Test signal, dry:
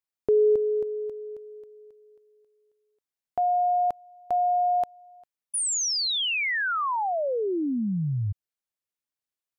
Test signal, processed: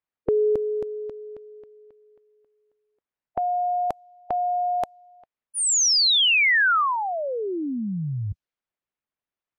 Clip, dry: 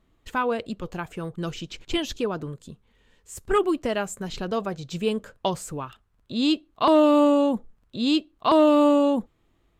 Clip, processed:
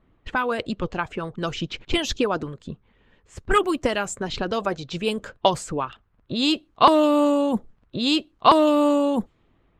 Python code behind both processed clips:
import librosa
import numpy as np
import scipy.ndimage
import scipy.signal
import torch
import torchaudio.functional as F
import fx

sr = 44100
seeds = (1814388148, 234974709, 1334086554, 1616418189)

y = fx.env_lowpass(x, sr, base_hz=2300.0, full_db=-20.5)
y = fx.hpss(y, sr, part='percussive', gain_db=9)
y = y * 10.0 ** (-1.0 / 20.0)